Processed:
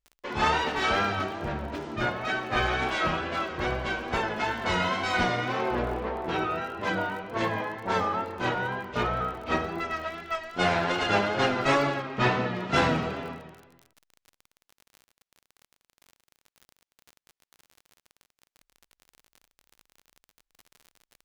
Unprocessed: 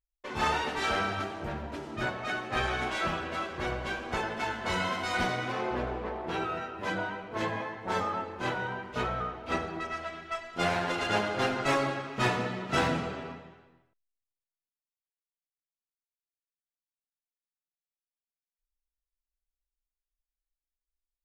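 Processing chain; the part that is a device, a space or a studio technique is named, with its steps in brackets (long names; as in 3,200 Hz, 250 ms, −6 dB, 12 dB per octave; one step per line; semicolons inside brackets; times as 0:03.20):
lo-fi chain (low-pass filter 6,400 Hz 12 dB per octave; tape wow and flutter; surface crackle 44 per second −42 dBFS)
0:12.02–0:12.55: high-frequency loss of the air 89 metres
level +4 dB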